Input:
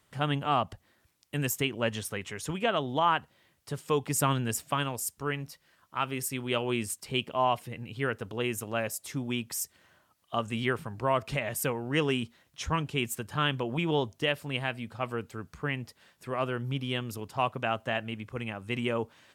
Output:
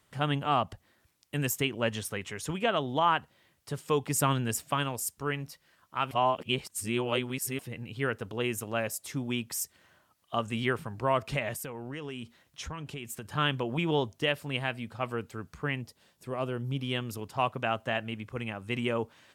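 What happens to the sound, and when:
6.11–7.59 reverse
11.53–13.27 compressor 8:1, threshold -35 dBFS
15.81–16.79 bell 1700 Hz -7.5 dB 1.7 oct

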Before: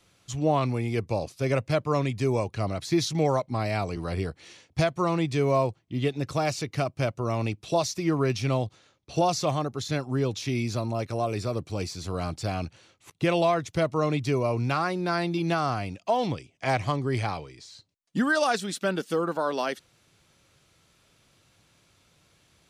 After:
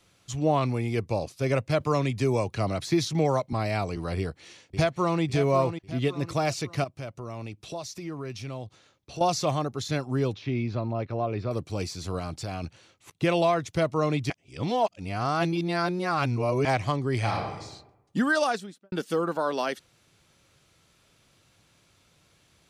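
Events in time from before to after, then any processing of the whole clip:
1.8–3.53 three-band squash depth 40%
4.18–5.23 echo throw 0.55 s, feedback 40%, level -9.5 dB
6.84–9.21 compressor 2:1, threshold -41 dBFS
10.33–11.51 air absorption 310 m
12.18–12.64 compressor 4:1, threshold -29 dBFS
14.3–16.65 reverse
17.18–17.61 reverb throw, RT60 0.93 s, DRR -1 dB
18.36–18.92 studio fade out

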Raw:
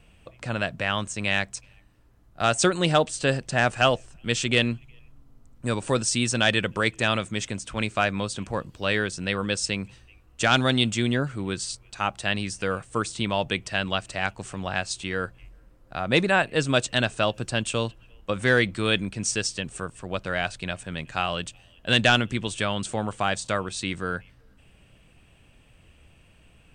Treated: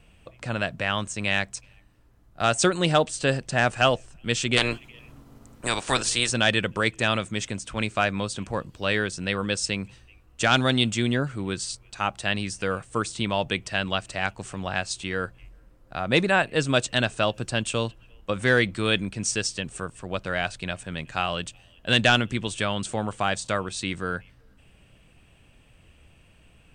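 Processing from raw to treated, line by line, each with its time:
4.56–6.29 spectral limiter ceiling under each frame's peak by 21 dB

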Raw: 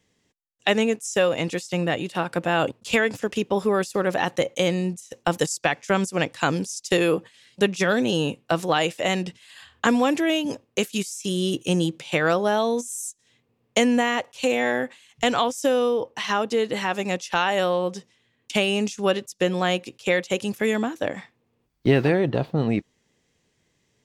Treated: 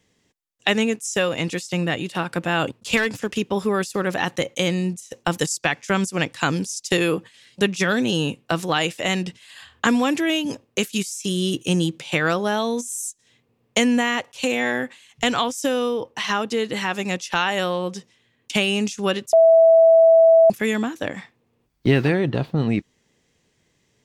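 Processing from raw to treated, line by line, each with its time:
2.97–3.39 hard clip -15.5 dBFS
19.33–20.5 bleep 656 Hz -6 dBFS
whole clip: dynamic EQ 600 Hz, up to -6 dB, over -35 dBFS, Q 0.99; gain +3 dB

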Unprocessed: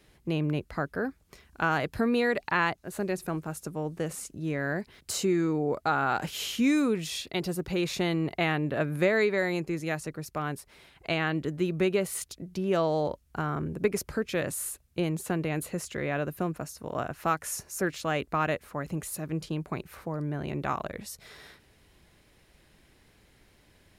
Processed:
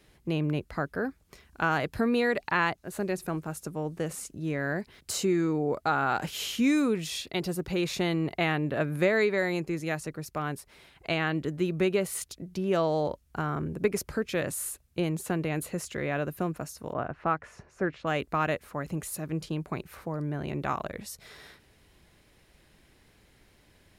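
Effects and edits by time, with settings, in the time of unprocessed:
16.93–18.07 LPF 2000 Hz

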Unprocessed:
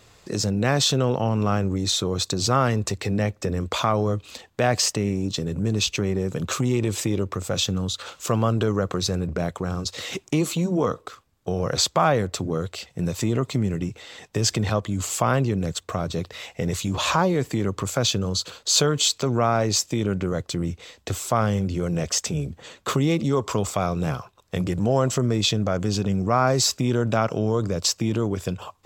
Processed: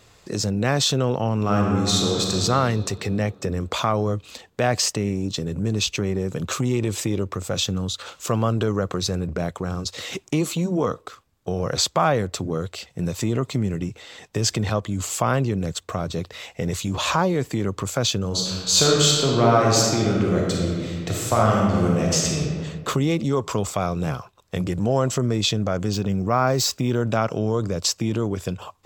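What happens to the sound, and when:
1.39–2.33 reverb throw, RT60 2.9 s, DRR -1 dB
18.27–22.39 reverb throw, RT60 1.9 s, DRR -2.5 dB
25.93–27.02 decimation joined by straight lines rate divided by 2×

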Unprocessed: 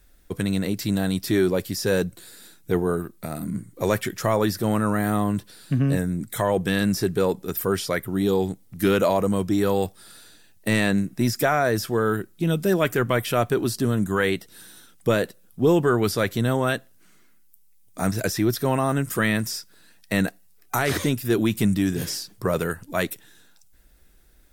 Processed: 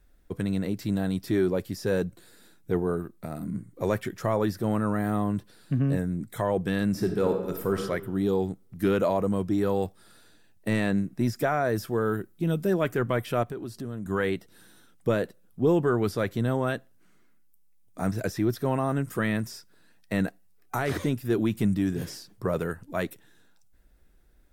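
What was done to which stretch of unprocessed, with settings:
6.89–7.8 reverb throw, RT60 1.1 s, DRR 4 dB
11.69–12.67 high shelf 11000 Hz +8 dB
13.43–14.06 compressor 2.5:1, threshold -32 dBFS
whole clip: high shelf 2200 Hz -9.5 dB; gain -3.5 dB

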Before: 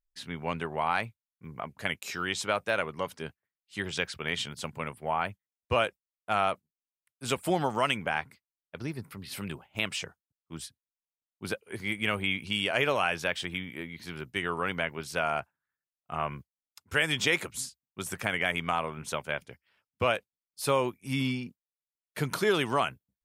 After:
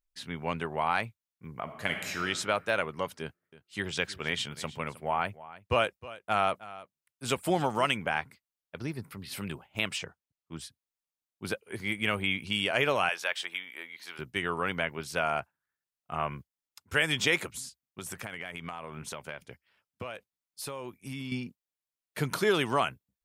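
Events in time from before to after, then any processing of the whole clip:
1.62–2.2 reverb throw, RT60 1.6 s, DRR 4 dB
3.21–7.86 echo 0.313 s -17.5 dB
9.97–10.65 high shelf 4700 Hz -> 8800 Hz -8 dB
13.09–14.19 HPF 690 Hz
17.52–21.32 compressor, threshold -35 dBFS

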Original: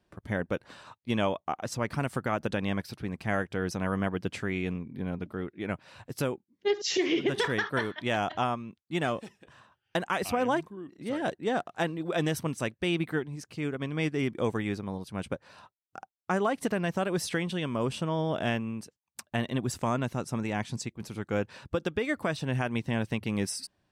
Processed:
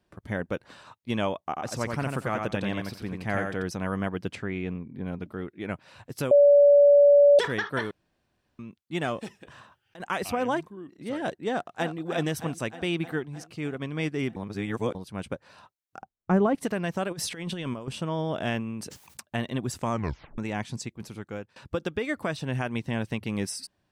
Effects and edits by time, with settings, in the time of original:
1.41–3.63 feedback echo 88 ms, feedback 18%, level -4 dB
4.35–5.06 LPF 2300 Hz 6 dB/oct
6.31–7.39 bleep 574 Hz -12.5 dBFS
7.91–8.59 room tone
9.21–10.05 negative-ratio compressor -39 dBFS
11.49–11.96 echo throw 0.31 s, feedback 70%, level -9.5 dB
14.36–14.95 reverse
16.02–16.55 tilt -4 dB/oct
17.11–17.88 negative-ratio compressor -33 dBFS, ratio -0.5
18.52–19.21 sustainer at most 58 dB/s
19.91 tape stop 0.47 s
21.03–21.56 fade out, to -20.5 dB

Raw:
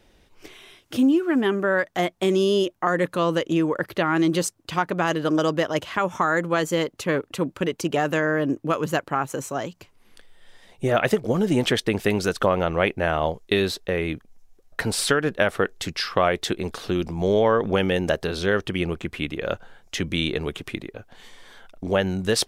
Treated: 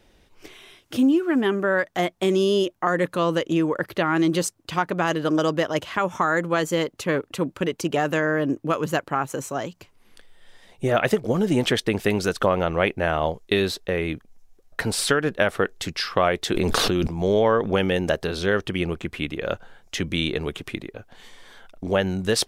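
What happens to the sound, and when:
16.52–17.07 fast leveller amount 100%

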